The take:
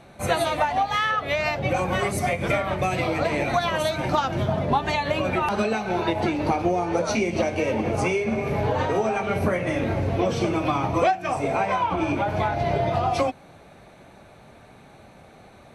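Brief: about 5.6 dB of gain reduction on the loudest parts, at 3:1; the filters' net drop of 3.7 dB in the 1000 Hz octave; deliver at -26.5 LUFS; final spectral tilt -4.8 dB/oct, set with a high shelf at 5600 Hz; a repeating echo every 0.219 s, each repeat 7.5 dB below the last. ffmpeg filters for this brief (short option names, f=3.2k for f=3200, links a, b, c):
-af "equalizer=f=1k:t=o:g=-5,highshelf=f=5.6k:g=-5,acompressor=threshold=-27dB:ratio=3,aecho=1:1:219|438|657|876|1095:0.422|0.177|0.0744|0.0312|0.0131,volume=3dB"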